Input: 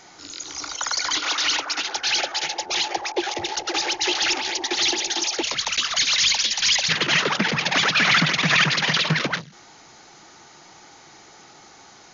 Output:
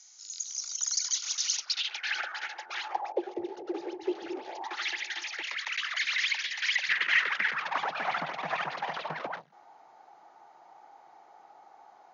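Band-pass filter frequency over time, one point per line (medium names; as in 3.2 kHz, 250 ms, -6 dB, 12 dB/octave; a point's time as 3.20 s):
band-pass filter, Q 3.3
1.55 s 6.4 kHz
2.17 s 1.5 kHz
2.80 s 1.5 kHz
3.29 s 380 Hz
4.35 s 380 Hz
4.89 s 1.9 kHz
7.44 s 1.9 kHz
7.87 s 780 Hz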